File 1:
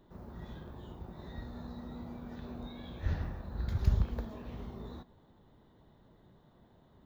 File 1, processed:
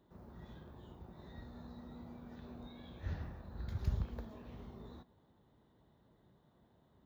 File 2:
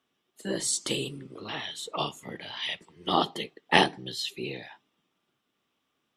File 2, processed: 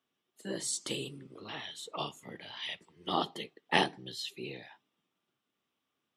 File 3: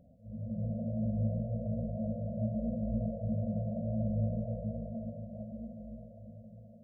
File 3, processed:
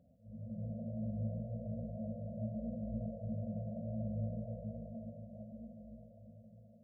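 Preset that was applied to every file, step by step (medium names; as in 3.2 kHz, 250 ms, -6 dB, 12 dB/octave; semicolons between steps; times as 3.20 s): high-pass 47 Hz; trim -6.5 dB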